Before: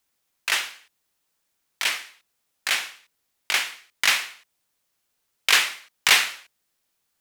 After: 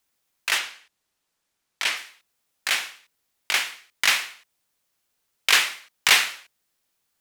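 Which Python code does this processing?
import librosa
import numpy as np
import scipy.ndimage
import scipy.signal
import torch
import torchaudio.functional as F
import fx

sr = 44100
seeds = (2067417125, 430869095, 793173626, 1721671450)

y = fx.high_shelf(x, sr, hz=12000.0, db=-10.5, at=(0.58, 1.97))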